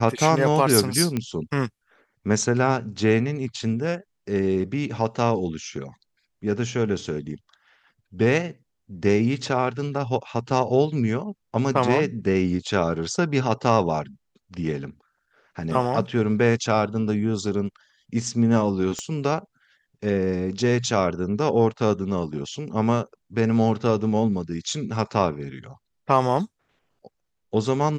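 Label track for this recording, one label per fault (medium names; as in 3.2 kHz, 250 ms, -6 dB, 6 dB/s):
1.170000	1.170000	pop -13 dBFS
18.990000	18.990000	pop -16 dBFS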